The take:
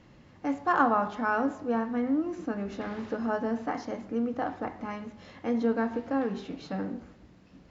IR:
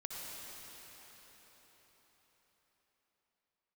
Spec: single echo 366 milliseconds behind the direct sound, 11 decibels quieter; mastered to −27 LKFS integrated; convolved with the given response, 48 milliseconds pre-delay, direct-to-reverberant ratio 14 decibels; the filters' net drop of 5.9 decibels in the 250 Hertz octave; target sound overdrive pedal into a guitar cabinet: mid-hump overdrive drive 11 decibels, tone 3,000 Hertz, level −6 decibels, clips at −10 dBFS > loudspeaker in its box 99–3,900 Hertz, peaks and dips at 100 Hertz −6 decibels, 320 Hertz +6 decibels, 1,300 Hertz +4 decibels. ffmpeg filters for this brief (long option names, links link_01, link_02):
-filter_complex "[0:a]equalizer=frequency=250:width_type=o:gain=-9,aecho=1:1:366:0.282,asplit=2[link_01][link_02];[1:a]atrim=start_sample=2205,adelay=48[link_03];[link_02][link_03]afir=irnorm=-1:irlink=0,volume=-14dB[link_04];[link_01][link_04]amix=inputs=2:normalize=0,asplit=2[link_05][link_06];[link_06]highpass=frequency=720:poles=1,volume=11dB,asoftclip=type=tanh:threshold=-10dB[link_07];[link_05][link_07]amix=inputs=2:normalize=0,lowpass=frequency=3000:poles=1,volume=-6dB,highpass=99,equalizer=frequency=100:width_type=q:width=4:gain=-6,equalizer=frequency=320:width_type=q:width=4:gain=6,equalizer=frequency=1300:width_type=q:width=4:gain=4,lowpass=frequency=3900:width=0.5412,lowpass=frequency=3900:width=1.3066,volume=1.5dB"